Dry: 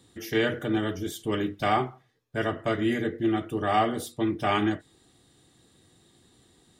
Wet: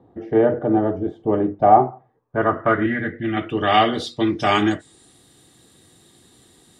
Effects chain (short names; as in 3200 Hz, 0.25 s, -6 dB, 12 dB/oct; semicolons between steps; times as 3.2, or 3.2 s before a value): low shelf 95 Hz -5 dB; low-pass sweep 750 Hz -> 12000 Hz, 1.96–5.25; 2.86–3.37 fifteen-band EQ 400 Hz -11 dB, 1000 Hz -9 dB, 2500 Hz -6 dB, 6300 Hz -6 dB; gain +7 dB